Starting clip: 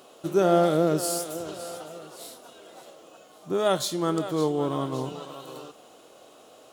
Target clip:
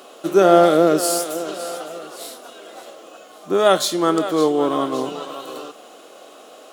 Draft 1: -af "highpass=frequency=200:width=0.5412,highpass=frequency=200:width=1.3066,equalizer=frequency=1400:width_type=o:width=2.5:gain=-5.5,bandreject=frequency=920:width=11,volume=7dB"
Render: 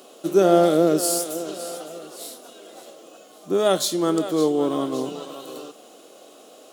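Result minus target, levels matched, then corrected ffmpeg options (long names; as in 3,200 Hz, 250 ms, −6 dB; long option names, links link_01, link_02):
1,000 Hz band −3.5 dB
-af "highpass=frequency=200:width=0.5412,highpass=frequency=200:width=1.3066,equalizer=frequency=1400:width_type=o:width=2.5:gain=3.5,bandreject=frequency=920:width=11,volume=7dB"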